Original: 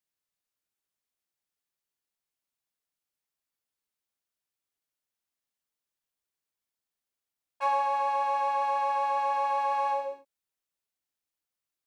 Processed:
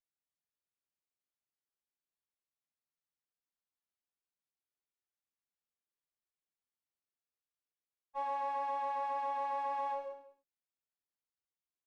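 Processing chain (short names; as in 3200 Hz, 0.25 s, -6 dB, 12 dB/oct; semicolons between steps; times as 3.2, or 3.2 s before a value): high shelf 3200 Hz -8.5 dB; on a send: echo 0.188 s -15.5 dB; on the sum: spectral freeze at 7.24, 0.92 s; running maximum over 3 samples; gain -8.5 dB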